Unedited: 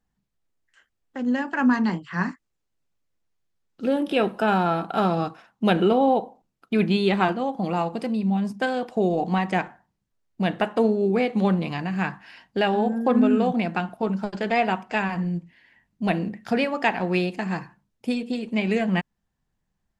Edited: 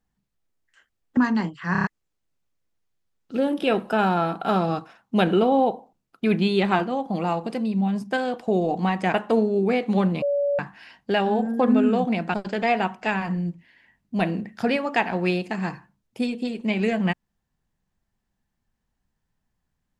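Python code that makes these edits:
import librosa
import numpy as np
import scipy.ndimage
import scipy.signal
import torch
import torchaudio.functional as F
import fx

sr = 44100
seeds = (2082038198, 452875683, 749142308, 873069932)

y = fx.edit(x, sr, fx.cut(start_s=1.17, length_s=0.49),
    fx.stutter_over(start_s=2.21, slice_s=0.03, count=5),
    fx.cut(start_s=9.63, length_s=0.98),
    fx.bleep(start_s=11.69, length_s=0.37, hz=570.0, db=-19.5),
    fx.cut(start_s=13.81, length_s=0.41), tone=tone)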